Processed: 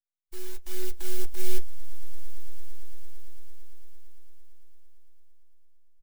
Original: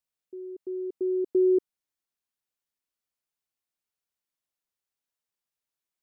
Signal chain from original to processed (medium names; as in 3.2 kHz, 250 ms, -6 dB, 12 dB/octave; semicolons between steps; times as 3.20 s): formants flattened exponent 0.1; high-pass 180 Hz; band-stop 400 Hz, Q 12; comb 6.7 ms, depth 55%; compression 6:1, threshold -33 dBFS, peak gain reduction 12.5 dB; peak limiter -25 dBFS, peak gain reduction 11 dB; half-wave rectifier; phaser 1.2 Hz, delay 2.7 ms, feedback 24%; echo with a slow build-up 113 ms, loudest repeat 8, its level -18 dB; reverberation RT60 0.25 s, pre-delay 8 ms, DRR 10 dB; spectral contrast expander 1.5:1; trim +13 dB